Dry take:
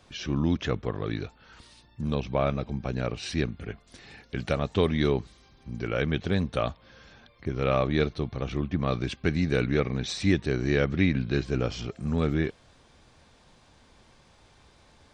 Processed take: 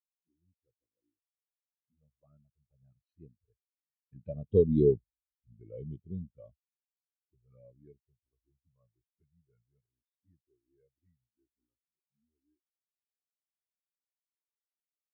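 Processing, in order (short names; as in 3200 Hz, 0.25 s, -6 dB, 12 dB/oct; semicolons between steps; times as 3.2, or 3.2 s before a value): Doppler pass-by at 4.89, 18 m/s, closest 13 m; envelope flanger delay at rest 8.4 ms, full sweep at -30 dBFS; spectral expander 2.5:1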